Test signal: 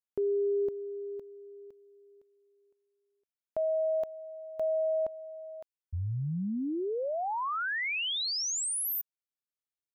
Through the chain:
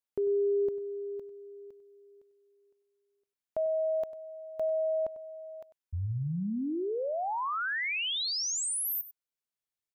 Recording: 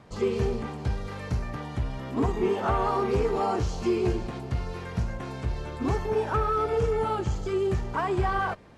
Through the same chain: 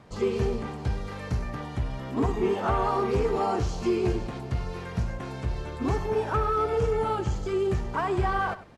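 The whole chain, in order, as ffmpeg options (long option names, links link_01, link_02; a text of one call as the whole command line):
ffmpeg -i in.wav -af "aecho=1:1:97:0.168" out.wav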